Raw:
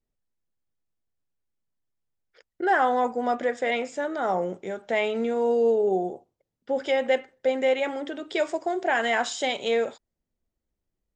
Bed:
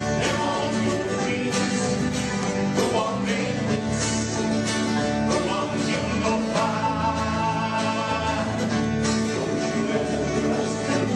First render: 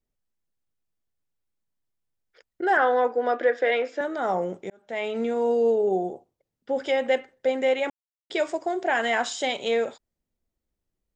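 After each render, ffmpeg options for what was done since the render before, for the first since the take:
-filter_complex "[0:a]asettb=1/sr,asplit=3[a][b][c];[a]atrim=end=2.774[d];[b]atrim=start=2.77:end=4.01,asetpts=PTS-STARTPTS,afade=t=in:d=0.004:c=qsin,afade=t=out:st=1.236:d=0.004:c=qsin,highpass=f=290:w=0.5412,highpass=f=290:w=1.3066,equalizer=f=320:t=q:w=4:g=5,equalizer=f=480:t=q:w=4:g=5,equalizer=f=850:t=q:w=4:g=-3,equalizer=f=1.6k:t=q:w=4:g=8,lowpass=f=5.1k:w=0.5412,lowpass=f=5.1k:w=1.3066[e];[c]atrim=start=4.006[f];[d][e]acrossfade=d=0.004:c1=hsin:c2=qsin[g];[g][f]acrossfade=d=0.004:c1=qsin:c2=hsin,asplit=4[h][i][j][k];[h]atrim=end=4.7,asetpts=PTS-STARTPTS,afade=t=out:st=4.696:d=0.004:c=hsin[l];[i]atrim=start=4.7:end=7.9,asetpts=PTS-STARTPTS,afade=t=in:d=0.52,afade=t=out:st=3.196:d=0.004:c=hsin[m];[j]atrim=start=7.9:end=8.3,asetpts=PTS-STARTPTS,volume=0[n];[k]atrim=start=8.3,asetpts=PTS-STARTPTS,afade=t=in:d=0.004:c=hsin[o];[l][m][n][o]concat=n=4:v=0:a=1"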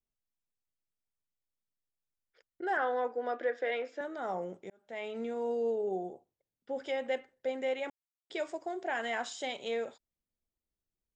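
-af "volume=-10.5dB"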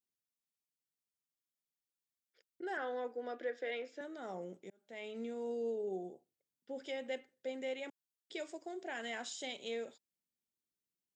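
-af "highpass=180,equalizer=f=970:t=o:w=2.3:g=-11.5"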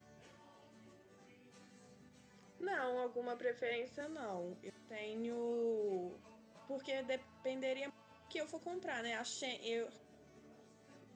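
-filter_complex "[1:a]volume=-38.5dB[a];[0:a][a]amix=inputs=2:normalize=0"

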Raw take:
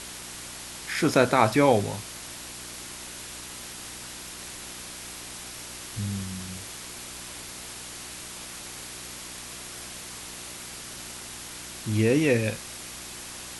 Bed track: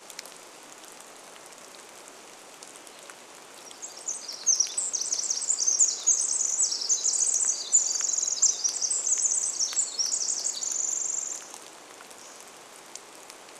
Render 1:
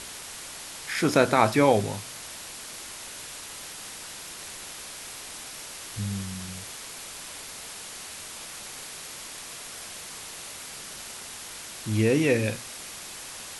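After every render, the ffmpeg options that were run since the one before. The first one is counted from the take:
-af "bandreject=f=60:t=h:w=4,bandreject=f=120:t=h:w=4,bandreject=f=180:t=h:w=4,bandreject=f=240:t=h:w=4,bandreject=f=300:t=h:w=4,bandreject=f=360:t=h:w=4"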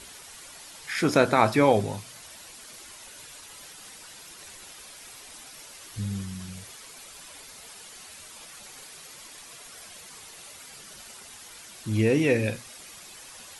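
-af "afftdn=nr=9:nf=-41"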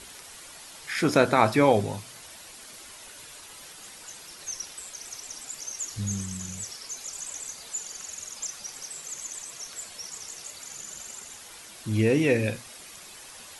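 -filter_complex "[1:a]volume=-13dB[a];[0:a][a]amix=inputs=2:normalize=0"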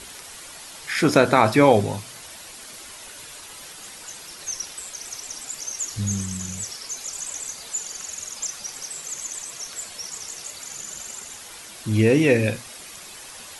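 -af "volume=5dB,alimiter=limit=-2dB:level=0:latency=1"

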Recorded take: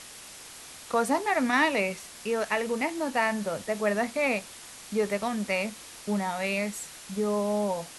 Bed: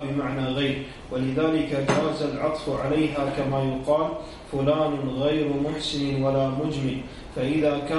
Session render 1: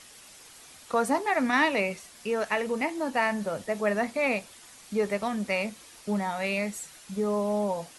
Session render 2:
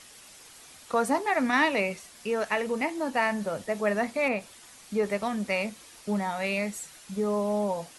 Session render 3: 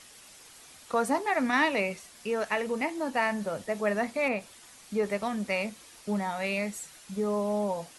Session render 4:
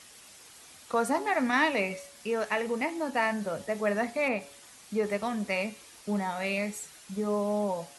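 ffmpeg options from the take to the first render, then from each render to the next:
-af "afftdn=nr=7:nf=-46"
-filter_complex "[0:a]asettb=1/sr,asplit=3[a][b][c];[a]atrim=end=4.284[d];[b]atrim=start=4.28:end=5.06,asetpts=PTS-STARTPTS,afade=t=in:d=0.004:c=qsin,afade=t=out:st=0.776:d=0.004:c=qsin,acrossover=split=2500[e][f];[f]acompressor=threshold=-44dB:ratio=4:attack=1:release=60[g];[e][g]amix=inputs=2:normalize=0[h];[c]atrim=start=5.056[i];[d][h]acrossfade=d=0.004:c1=hsin:c2=qsin[j];[j][i]acrossfade=d=0.004:c1=qsin:c2=hsin"
-af "volume=-1.5dB"
-af "highpass=41,bandreject=f=140.9:t=h:w=4,bandreject=f=281.8:t=h:w=4,bandreject=f=422.7:t=h:w=4,bandreject=f=563.6:t=h:w=4,bandreject=f=704.5:t=h:w=4,bandreject=f=845.4:t=h:w=4,bandreject=f=986.3:t=h:w=4,bandreject=f=1.1272k:t=h:w=4,bandreject=f=1.2681k:t=h:w=4,bandreject=f=1.409k:t=h:w=4,bandreject=f=1.5499k:t=h:w=4,bandreject=f=1.6908k:t=h:w=4,bandreject=f=1.8317k:t=h:w=4,bandreject=f=1.9726k:t=h:w=4,bandreject=f=2.1135k:t=h:w=4,bandreject=f=2.2544k:t=h:w=4,bandreject=f=2.3953k:t=h:w=4,bandreject=f=2.5362k:t=h:w=4,bandreject=f=2.6771k:t=h:w=4,bandreject=f=2.818k:t=h:w=4,bandreject=f=2.9589k:t=h:w=4,bandreject=f=3.0998k:t=h:w=4,bandreject=f=3.2407k:t=h:w=4,bandreject=f=3.3816k:t=h:w=4,bandreject=f=3.5225k:t=h:w=4,bandreject=f=3.6634k:t=h:w=4,bandreject=f=3.8043k:t=h:w=4,bandreject=f=3.9452k:t=h:w=4,bandreject=f=4.0861k:t=h:w=4,bandreject=f=4.227k:t=h:w=4,bandreject=f=4.3679k:t=h:w=4,bandreject=f=4.5088k:t=h:w=4,bandreject=f=4.6497k:t=h:w=4,bandreject=f=4.7906k:t=h:w=4,bandreject=f=4.9315k:t=h:w=4"

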